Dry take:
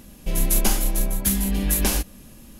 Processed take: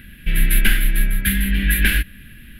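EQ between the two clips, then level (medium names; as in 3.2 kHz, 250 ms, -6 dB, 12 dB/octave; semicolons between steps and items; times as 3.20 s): FFT filter 120 Hz 0 dB, 360 Hz -10 dB, 530 Hz -17 dB, 750 Hz -22 dB, 1.1 kHz -19 dB, 1.6 kHz +12 dB, 3.5 kHz +1 dB, 6.2 kHz -27 dB, 11 kHz -6 dB; +6.0 dB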